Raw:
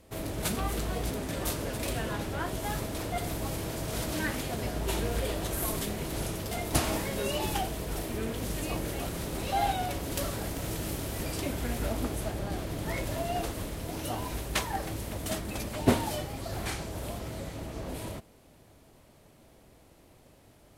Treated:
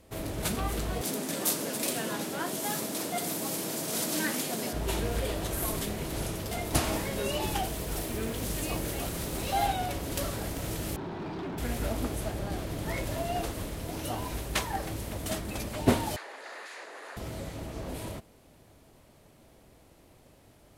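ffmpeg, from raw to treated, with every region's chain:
ffmpeg -i in.wav -filter_complex "[0:a]asettb=1/sr,asplit=3[link_01][link_02][link_03];[link_01]atrim=end=1.014[link_04];[link_02]atrim=start=1.01:end=4.73,asetpts=PTS-STARTPTS,afade=type=in:duration=0.004:curve=qsin,afade=type=out:start_time=3.716:duration=0.004:curve=qsin,highpass=frequency=190:width=0.5412,highpass=frequency=190:width=1.3066,bass=frequency=250:gain=5,treble=frequency=4000:gain=8[link_05];[link_03]atrim=start=4.726[link_06];[link_04][link_05]acrossfade=duration=0.004:curve1=hsin:curve2=qsin[link_07];[link_07][link_06]acrossfade=duration=0.004:curve1=qsin:curve2=hsin,asettb=1/sr,asplit=3[link_08][link_09][link_10];[link_08]atrim=end=7.634[link_11];[link_09]atrim=start=7.63:end=9.67,asetpts=PTS-STARTPTS,afade=type=in:duration=0.004:curve=qsin,afade=type=out:start_time=2.036:duration=0.004:curve=qsin,highshelf=frequency=4500:gain=4.5,acrusher=bits=9:dc=4:mix=0:aa=0.000001[link_12];[link_10]atrim=start=9.666[link_13];[link_11][link_12]acrossfade=duration=0.004:curve1=hsin:curve2=qsin[link_14];[link_14][link_13]acrossfade=duration=0.004:curve1=qsin:curve2=hsin,asettb=1/sr,asplit=3[link_15][link_16][link_17];[link_15]atrim=end=10.964[link_18];[link_16]atrim=start=10.96:end=11.58,asetpts=PTS-STARTPTS,afade=type=in:duration=0.004:curve=qsin,afade=type=out:start_time=0.616:duration=0.004:curve=qsin,highpass=130,equalizer=frequency=180:width_type=q:width=4:gain=9,equalizer=frequency=370:width_type=q:width=4:gain=9,equalizer=frequency=530:width_type=q:width=4:gain=-9,equalizer=frequency=890:width_type=q:width=4:gain=10,equalizer=frequency=2100:width_type=q:width=4:gain=-7,equalizer=frequency=2900:width_type=q:width=4:gain=-8,lowpass=frequency=3400:width=0.5412,lowpass=frequency=3400:width=1.3066,volume=34dB,asoftclip=hard,volume=-34dB[link_19];[link_17]atrim=start=11.576[link_20];[link_18][link_19]acrossfade=duration=0.004:curve1=hsin:curve2=qsin[link_21];[link_21][link_20]acrossfade=duration=0.004:curve1=qsin:curve2=hsin,asettb=1/sr,asplit=3[link_22][link_23][link_24];[link_22]atrim=end=16.164[link_25];[link_23]atrim=start=16.16:end=17.17,asetpts=PTS-STARTPTS,afade=type=in:duration=0.004:curve=qsin,afade=type=out:start_time=1.006:duration=0.004:curve=qsin,aeval=exprs='0.0133*(abs(mod(val(0)/0.0133+3,4)-2)-1)':channel_layout=same,highpass=frequency=400:width=0.5412,highpass=frequency=400:width=1.3066,equalizer=frequency=1800:width_type=q:width=4:gain=9,equalizer=frequency=3200:width_type=q:width=4:gain=-5,equalizer=frequency=5600:width_type=q:width=4:gain=-9,equalizer=frequency=8100:width_type=q:width=4:gain=-10,lowpass=frequency=8700:width=0.5412,lowpass=frequency=8700:width=1.3066[link_26];[link_24]atrim=start=17.166[link_27];[link_25][link_26]acrossfade=duration=0.004:curve1=hsin:curve2=qsin[link_28];[link_28][link_27]acrossfade=duration=0.004:curve1=qsin:curve2=hsin" out.wav

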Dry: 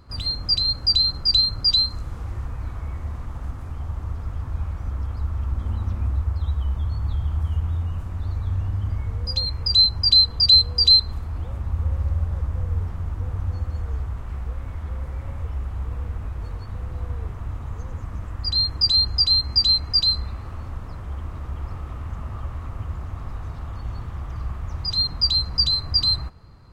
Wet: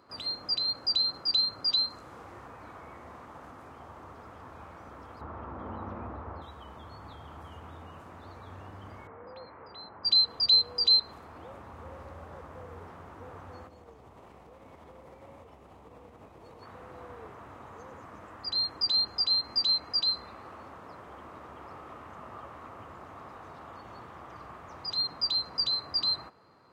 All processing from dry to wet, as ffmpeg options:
ffmpeg -i in.wav -filter_complex "[0:a]asettb=1/sr,asplit=3[link_01][link_02][link_03];[link_01]atrim=end=5.214[link_04];[link_02]atrim=start=5.21:end=6.42,asetpts=PTS-STARTPTS,afade=type=in:duration=0.004:curve=qsin,afade=type=out:start_time=1.206:duration=0.004:curve=qsin,lowpass=1300,acontrast=78,aemphasis=mode=production:type=75fm[link_05];[link_03]atrim=start=6.416[link_06];[link_04][link_05]acrossfade=duration=0.004:curve1=hsin:curve2=qsin[link_07];[link_07][link_06]acrossfade=duration=0.004:curve1=qsin:curve2=hsin,asettb=1/sr,asplit=3[link_08][link_09][link_10];[link_08]atrim=end=9.074[link_11];[link_09]atrim=start=9.07:end=10.05,asetpts=PTS-STARTPTS,afade=type=in:duration=0.004:curve=qsin,afade=type=out:start_time=0.976:duration=0.004:curve=qsin,lowpass=frequency=2000:width=0.5412,lowpass=frequency=2000:width=1.3066,lowshelf=frequency=130:gain=-12[link_12];[link_10]atrim=start=10.046[link_13];[link_11][link_12]acrossfade=duration=0.004:curve1=hsin:curve2=qsin[link_14];[link_14][link_13]acrossfade=duration=0.004:curve1=qsin:curve2=hsin,asettb=1/sr,asplit=3[link_15][link_16][link_17];[link_15]atrim=end=13.674[link_18];[link_16]atrim=start=13.67:end=16.63,asetpts=PTS-STARTPTS,afade=type=in:duration=0.004:curve=qsin,afade=type=out:start_time=2.956:duration=0.004:curve=qsin,equalizer=frequency=1500:width=1.5:gain=-9.5,acompressor=threshold=-28dB:ratio=6:attack=3.2:release=140:knee=1:detection=peak[link_19];[link_17]atrim=start=16.626[link_20];[link_18][link_19]acrossfade=duration=0.004:curve1=hsin:curve2=qsin[link_21];[link_21][link_20]acrossfade=duration=0.004:curve1=qsin:curve2=hsin,acrossover=split=6000[link_22][link_23];[link_23]acompressor=threshold=-46dB:ratio=4:attack=1:release=60[link_24];[link_22][link_24]amix=inputs=2:normalize=0,highpass=370,highshelf=frequency=2400:gain=-9" out.wav

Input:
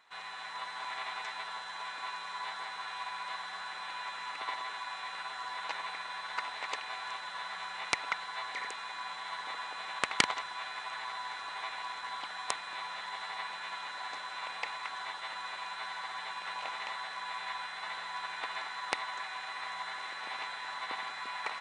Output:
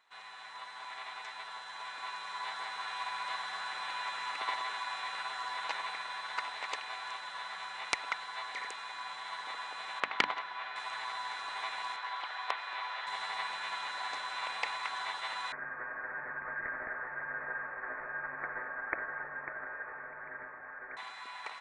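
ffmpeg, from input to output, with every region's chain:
ffmpeg -i in.wav -filter_complex "[0:a]asettb=1/sr,asplit=3[link_01][link_02][link_03];[link_01]atrim=end=10.004[link_04];[link_02]atrim=start=10:end=10.76,asetpts=PTS-STARTPTS,afade=type=in:duration=0.004:curve=qsin,afade=type=out:start_time=0.756:duration=0.004:curve=qsin,highpass=140,lowpass=3100,bandreject=frequency=50:width_type=h:width=6,bandreject=frequency=100:width_type=h:width=6,bandreject=frequency=150:width_type=h:width=6,bandreject=frequency=200:width_type=h:width=6,bandreject=frequency=250:width_type=h:width=6,bandreject=frequency=300:width_type=h:width=6[link_05];[link_03]atrim=start=10.756[link_06];[link_04][link_05]acrossfade=duration=0.004:curve1=hsin:curve2=qsin[link_07];[link_07][link_06]acrossfade=duration=0.004:curve1=qsin:curve2=hsin,asettb=1/sr,asplit=3[link_08][link_09][link_10];[link_08]atrim=end=11.964[link_11];[link_09]atrim=start=11.96:end=13.07,asetpts=PTS-STARTPTS,afade=type=in:duration=0.004:curve=qsin,afade=type=out:start_time=1.106:duration=0.004:curve=qsin,highpass=440,lowpass=5500,acrossover=split=3900[link_12][link_13];[link_13]acompressor=threshold=-58dB:ratio=4:attack=1:release=60[link_14];[link_12][link_14]amix=inputs=2:normalize=0[link_15];[link_10]atrim=start=13.066[link_16];[link_11][link_15]acrossfade=duration=0.004:curve1=hsin:curve2=qsin[link_17];[link_17][link_16]acrossfade=duration=0.004:curve1=qsin:curve2=hsin,asettb=1/sr,asplit=3[link_18][link_19][link_20];[link_18]atrim=end=15.524[link_21];[link_19]atrim=start=15.52:end=20.97,asetpts=PTS-STARTPTS,afade=type=in:duration=0.004:curve=qsin,afade=type=out:start_time=5.446:duration=0.004:curve=qsin,aecho=1:1:547:0.398,atrim=end_sample=240345,lowpass=frequency=2200:width_type=q:width=0.5098,lowpass=frequency=2200:width_type=q:width=0.6013,lowpass=frequency=2200:width_type=q:width=0.9,lowpass=frequency=2200:width_type=q:width=2.563,afreqshift=-2600,equalizer=frequency=740:width=1.1:gain=-6[link_22];[link_20]atrim=start=20.966[link_23];[link_21][link_22]acrossfade=duration=0.004:curve1=hsin:curve2=qsin[link_24];[link_24][link_23]acrossfade=duration=0.004:curve1=qsin:curve2=hsin,equalizer=frequency=130:width_type=o:width=1.9:gain=-5,dynaudnorm=framelen=410:gausssize=11:maxgain=8dB,volume=-5.5dB" out.wav

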